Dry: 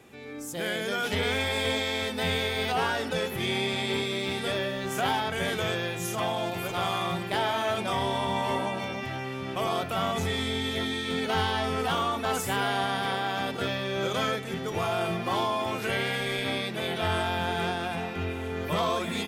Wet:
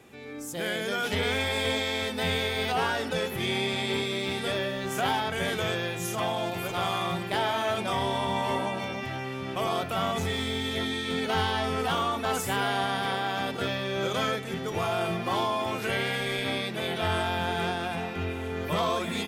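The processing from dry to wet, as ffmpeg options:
-filter_complex "[0:a]asettb=1/sr,asplit=3[s0][s1][s2];[s0]atrim=end=10.184[s3];[s1]atrim=start=10.18:end=10.71,asetpts=PTS-STARTPTS,afade=t=in:d=0.004:c=qsin,afade=t=out:st=0.526:d=0.004:c=qsin,aeval=exprs='sgn(val(0))*max(abs(val(0))-0.00316,0)':c=same[s4];[s2]atrim=start=10.706[s5];[s3][s4]acrossfade=d=0.004:c1=hsin:c2=qsin[s6];[s6][s5]acrossfade=d=0.004:c1=qsin:c2=hsin"

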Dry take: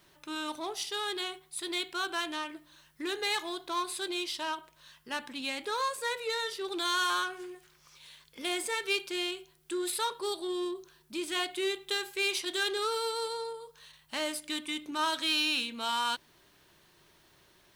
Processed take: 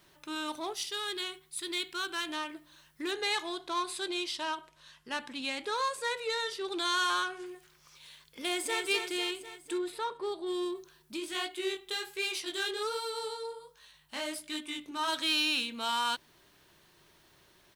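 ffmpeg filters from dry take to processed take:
-filter_complex "[0:a]asettb=1/sr,asplit=3[s0][s1][s2];[s0]atrim=end=0.734[s3];[s1]atrim=start=0.73:end=2.29,asetpts=PTS-STARTPTS,afade=t=in:d=0.004:c=qsin,afade=t=out:st=1.556:d=0.004:c=qsin,equalizer=f=680:t=o:w=1.1:g=-9[s4];[s2]atrim=start=2.286[s5];[s3][s4]acrossfade=d=0.004:c1=hsin:c2=qsin[s6];[s6][s5]acrossfade=d=0.004:c1=qsin:c2=hsin,asettb=1/sr,asplit=3[s7][s8][s9];[s7]atrim=end=3.114[s10];[s8]atrim=start=3.11:end=7.46,asetpts=PTS-STARTPTS,afade=t=in:d=0.004:c=qsin,afade=t=out:st=4.346:d=0.004:c=qsin,lowpass=9900[s11];[s9]atrim=start=7.456[s12];[s10][s11]acrossfade=d=0.004:c1=hsin:c2=qsin[s13];[s13][s12]acrossfade=d=0.004:c1=qsin:c2=hsin,asplit=2[s14][s15];[s15]afade=t=in:st=8.4:d=0.01,afade=t=out:st=8.83:d=0.01,aecho=0:1:250|500|750|1000|1250|1500|1750|2000:0.473151|0.283891|0.170334|0.102201|0.0613204|0.0367922|0.0220753|0.0132452[s16];[s14][s16]amix=inputs=2:normalize=0,asplit=3[s17][s18][s19];[s17]afade=t=out:st=9.77:d=0.02[s20];[s18]lowpass=f=1300:p=1,afade=t=in:st=9.77:d=0.02,afade=t=out:st=10.46:d=0.02[s21];[s19]afade=t=in:st=10.46:d=0.02[s22];[s20][s21][s22]amix=inputs=3:normalize=0,asplit=3[s23][s24][s25];[s23]afade=t=out:st=11.16:d=0.02[s26];[s24]flanger=delay=16:depth=7.9:speed=1.3,afade=t=in:st=11.16:d=0.02,afade=t=out:st=15.07:d=0.02[s27];[s25]afade=t=in:st=15.07:d=0.02[s28];[s26][s27][s28]amix=inputs=3:normalize=0"

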